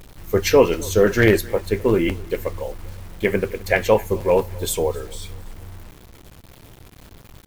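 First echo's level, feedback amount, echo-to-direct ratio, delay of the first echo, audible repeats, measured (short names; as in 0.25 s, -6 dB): -23.0 dB, 50%, -22.0 dB, 0.26 s, 2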